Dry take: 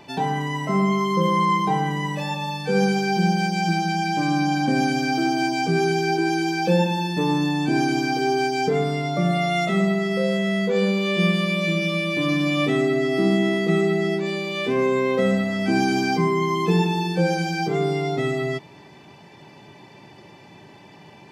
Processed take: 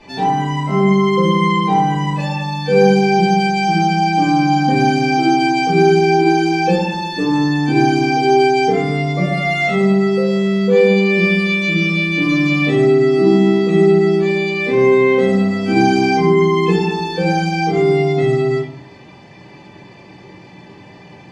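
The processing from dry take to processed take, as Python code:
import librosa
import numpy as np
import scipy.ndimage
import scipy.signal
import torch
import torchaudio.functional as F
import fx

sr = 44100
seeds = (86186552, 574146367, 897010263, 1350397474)

y = scipy.signal.sosfilt(scipy.signal.butter(2, 7500.0, 'lowpass', fs=sr, output='sos'), x)
y = fx.room_shoebox(y, sr, seeds[0], volume_m3=32.0, walls='mixed', distance_m=1.7)
y = y * 10.0 ** (-4.5 / 20.0)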